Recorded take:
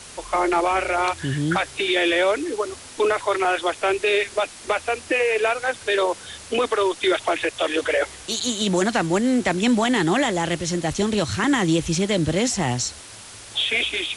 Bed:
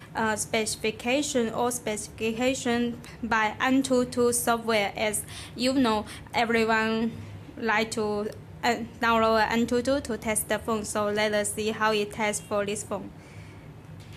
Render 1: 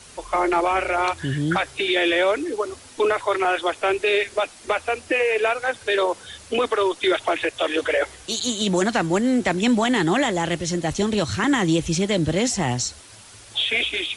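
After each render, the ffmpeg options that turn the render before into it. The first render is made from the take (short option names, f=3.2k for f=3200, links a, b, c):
-af "afftdn=nr=6:nf=-41"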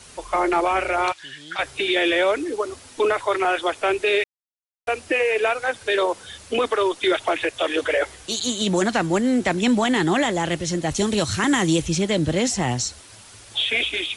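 -filter_complex "[0:a]asettb=1/sr,asplit=3[a][b][c];[a]atrim=end=1.124[d];[b]atrim=start=1.12:end=1.59,asetpts=PTS-STARTPTS,afade=t=in:d=0.004:c=qsin,afade=t=out:st=0.466:d=0.004:c=qsin,bandpass=f=3.6k:t=q:w=0.94[e];[c]atrim=start=1.586[f];[d][e]acrossfade=d=0.004:c1=hsin:c2=qsin[g];[g][f]acrossfade=d=0.004:c1=qsin:c2=hsin,asettb=1/sr,asplit=3[h][i][j];[h]atrim=end=10.944[k];[i]atrim=start=10.94:end=11.82,asetpts=PTS-STARTPTS,afade=t=in:d=0.004:c=qsin,afade=t=out:st=0.876:d=0.004:c=qsin,highshelf=f=6.2k:g=9.5[l];[j]atrim=start=11.816[m];[k][l]acrossfade=d=0.004:c1=hsin:c2=qsin[n];[n][m]acrossfade=d=0.004:c1=qsin:c2=hsin,asplit=3[o][p][q];[o]atrim=end=4.24,asetpts=PTS-STARTPTS,afade=t=out:st=4.236:d=0.004:c=hsin[r];[p]atrim=start=4.24:end=4.87,asetpts=PTS-STARTPTS,volume=0[s];[q]atrim=start=4.87,asetpts=PTS-STARTPTS,afade=t=in:d=0.004:c=hsin[t];[r][s][t]concat=n=3:v=0:a=1"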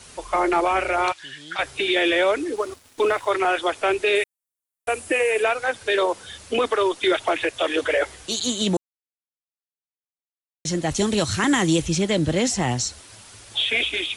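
-filter_complex "[0:a]asettb=1/sr,asplit=3[a][b][c];[a]atrim=end=2.564[d];[b]atrim=start=2.56:end=3.3,asetpts=PTS-STARTPTS,afade=t=in:d=0.004:c=qsin,afade=t=out:st=0.736:d=0.004:c=qsin,aeval=exprs='sgn(val(0))*max(abs(val(0))-0.00596,0)':c=same[e];[c]atrim=start=3.296[f];[d][e]acrossfade=d=0.004:c1=hsin:c2=qsin[g];[g][f]acrossfade=d=0.004:c1=qsin:c2=hsin,asettb=1/sr,asplit=3[h][i][j];[h]atrim=end=4.154[k];[i]atrim=start=4.15:end=5.43,asetpts=PTS-STARTPTS,afade=t=in:d=0.004:c=qsin,afade=t=out:st=1.276:d=0.004:c=qsin,highshelf=f=6.8k:t=q:w=1.5:g=8[l];[j]atrim=start=5.426[m];[k][l]acrossfade=d=0.004:c1=hsin:c2=qsin[n];[n][m]acrossfade=d=0.004:c1=qsin:c2=hsin,asplit=3[o][p][q];[o]atrim=end=8.77,asetpts=PTS-STARTPTS,afade=t=out:st=8.766:d=0.004:c=hsin[r];[p]atrim=start=8.77:end=10.65,asetpts=PTS-STARTPTS,volume=0[s];[q]atrim=start=10.65,asetpts=PTS-STARTPTS,afade=t=in:d=0.004:c=hsin[t];[r][s][t]concat=n=3:v=0:a=1"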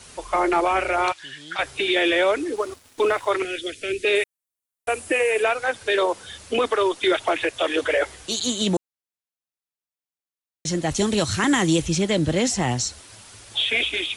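-filter_complex "[0:a]asettb=1/sr,asplit=3[a][b][c];[a]atrim=end=3.424[d];[b]atrim=start=3.42:end=4.05,asetpts=PTS-STARTPTS,afade=t=in:d=0.004:c=qsin,afade=t=out:st=0.626:d=0.004:c=qsin,asuperstop=centerf=930:order=4:qfactor=0.5[e];[c]atrim=start=4.046[f];[d][e]acrossfade=d=0.004:c1=hsin:c2=qsin[g];[g][f]acrossfade=d=0.004:c1=qsin:c2=hsin"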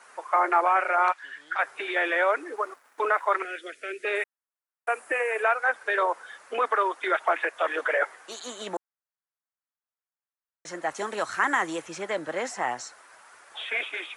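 -af "highpass=730,highshelf=f=2.3k:t=q:w=1.5:g=-13"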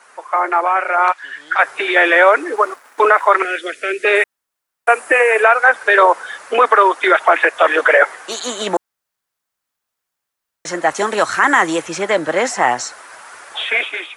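-af "dynaudnorm=f=840:g=3:m=11.5dB,alimiter=level_in=5dB:limit=-1dB:release=50:level=0:latency=1"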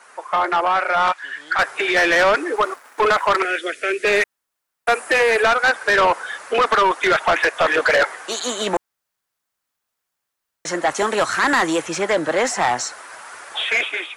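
-af "asoftclip=type=tanh:threshold=-11.5dB"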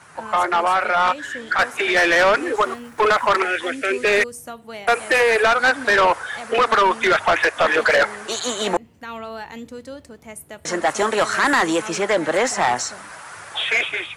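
-filter_complex "[1:a]volume=-10.5dB[a];[0:a][a]amix=inputs=2:normalize=0"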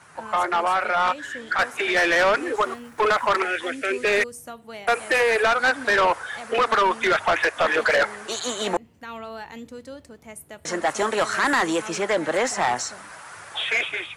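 -af "volume=-3.5dB"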